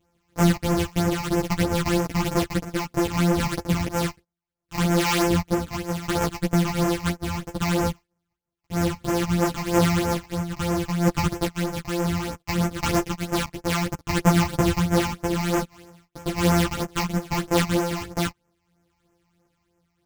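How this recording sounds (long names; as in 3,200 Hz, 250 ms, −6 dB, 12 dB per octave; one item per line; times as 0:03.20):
a buzz of ramps at a fixed pitch in blocks of 256 samples
phaser sweep stages 8, 3.1 Hz, lowest notch 430–4,000 Hz
tremolo triangle 0.64 Hz, depth 40%
a shimmering, thickened sound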